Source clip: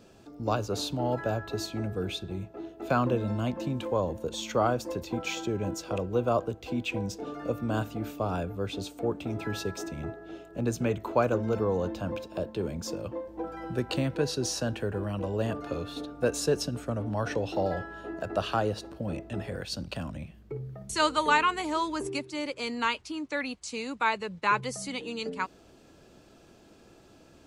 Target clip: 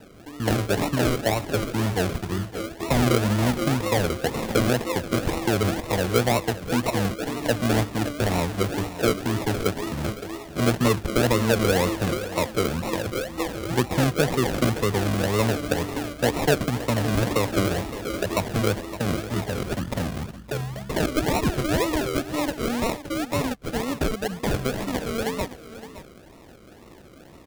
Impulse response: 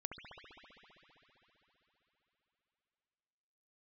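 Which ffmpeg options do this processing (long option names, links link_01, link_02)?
-filter_complex "[0:a]asettb=1/sr,asplit=3[link_01][link_02][link_03];[link_01]atrim=end=1.024[link_04];[link_02]atrim=start=1.02:end=1.46,asetpts=PTS-STARTPTS,afade=type=in:duration=0.004:curve=qsin,afade=type=out:start_time=0.436:duration=0.004:curve=qsin,lowshelf=frequency=160:gain=-6[link_05];[link_03]atrim=start=1.456[link_06];[link_04][link_05]acrossfade=duration=0.004:curve1=hsin:curve2=qsin[link_07];[link_07][link_06]acrossfade=duration=0.004:curve1=qsin:curve2=hsin,acrossover=split=290[link_08][link_09];[link_09]alimiter=limit=-22dB:level=0:latency=1:release=148[link_10];[link_08][link_10]amix=inputs=2:normalize=0,acrusher=samples=39:mix=1:aa=0.000001:lfo=1:lforange=23.4:lforate=2,aecho=1:1:566:0.2,volume=8dB"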